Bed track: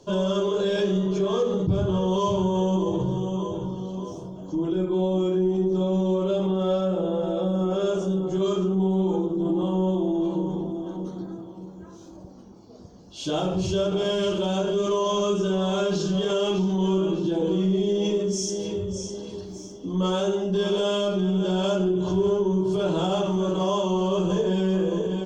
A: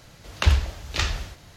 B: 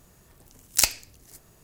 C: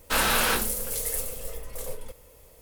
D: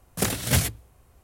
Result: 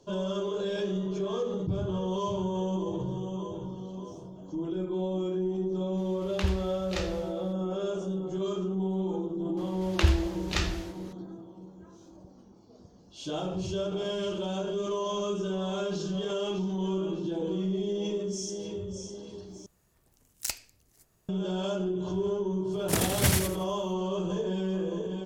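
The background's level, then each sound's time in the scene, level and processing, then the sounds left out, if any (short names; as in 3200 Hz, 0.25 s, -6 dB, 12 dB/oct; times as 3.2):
bed track -7.5 dB
5.97 add A -10.5 dB
9.57 add A -4.5 dB
19.66 replace with B -12.5 dB
22.71 add D -3.5 dB + feedback echo 84 ms, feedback 30%, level -4 dB
not used: C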